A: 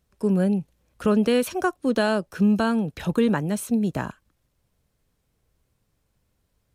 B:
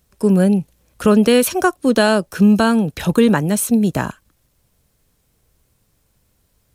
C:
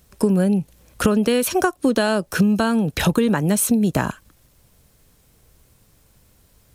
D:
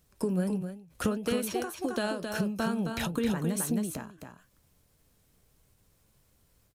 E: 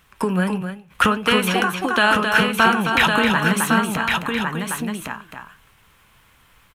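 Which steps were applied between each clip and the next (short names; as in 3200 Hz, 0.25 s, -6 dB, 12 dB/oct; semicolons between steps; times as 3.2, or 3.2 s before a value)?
high shelf 5700 Hz +8 dB; gain +7.5 dB
compressor 10:1, threshold -21 dBFS, peak gain reduction 13.5 dB; gain +6.5 dB
flange 1.6 Hz, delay 5.7 ms, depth 7 ms, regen +65%; echo 0.266 s -6 dB; ending taper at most 100 dB/s; gain -7 dB
band shelf 1700 Hz +14 dB 2.3 oct; echo 1.107 s -4.5 dB; on a send at -20.5 dB: reverb RT60 0.50 s, pre-delay 4 ms; on the sum: gain +7 dB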